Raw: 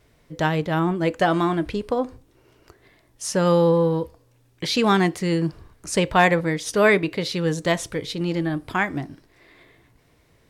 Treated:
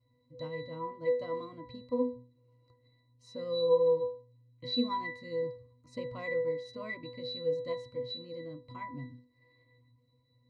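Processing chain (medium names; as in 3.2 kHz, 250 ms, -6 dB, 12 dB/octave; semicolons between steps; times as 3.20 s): resonant high shelf 2.7 kHz +7 dB, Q 1.5; pitch-class resonator B, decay 0.37 s; trim +2.5 dB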